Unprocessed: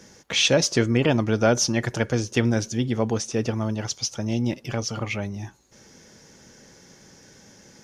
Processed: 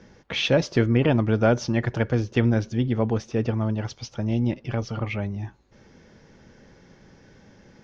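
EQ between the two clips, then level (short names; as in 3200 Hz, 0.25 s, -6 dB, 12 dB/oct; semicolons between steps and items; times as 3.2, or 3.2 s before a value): air absorption 240 m; low shelf 65 Hz +10.5 dB; 0.0 dB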